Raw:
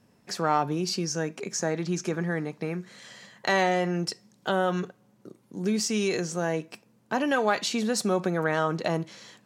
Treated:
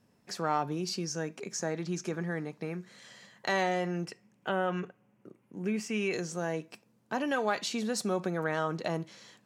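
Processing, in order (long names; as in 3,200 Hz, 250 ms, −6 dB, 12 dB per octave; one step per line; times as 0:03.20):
0:04.06–0:06.13: high shelf with overshoot 3,200 Hz −6.5 dB, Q 3
level −5.5 dB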